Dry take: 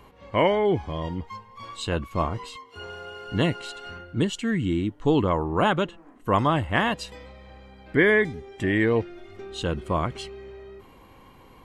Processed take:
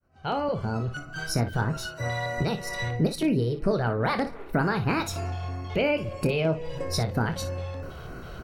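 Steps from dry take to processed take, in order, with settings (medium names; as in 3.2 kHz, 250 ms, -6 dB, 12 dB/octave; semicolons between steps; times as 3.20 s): fade-in on the opening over 2.16 s; bass shelf 250 Hz +9 dB; compression 4:1, threshold -30 dBFS, peak gain reduction 15 dB; wide varispeed 1.38×; LFO notch square 3.1 Hz 270–3500 Hz; early reflections 25 ms -10 dB, 58 ms -12 dB; on a send at -21 dB: reverberation RT60 1.3 s, pre-delay 154 ms; on the sum: trim +6.5 dB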